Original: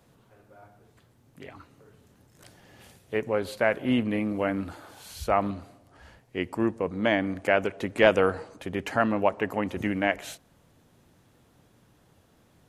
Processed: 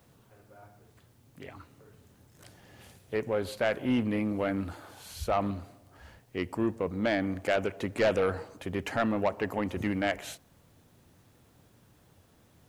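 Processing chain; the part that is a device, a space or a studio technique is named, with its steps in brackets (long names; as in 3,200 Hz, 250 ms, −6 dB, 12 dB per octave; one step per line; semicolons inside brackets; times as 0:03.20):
open-reel tape (soft clipping −17.5 dBFS, distortion −11 dB; parametric band 89 Hz +4 dB 0.86 octaves; white noise bed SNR 40 dB)
level −1.5 dB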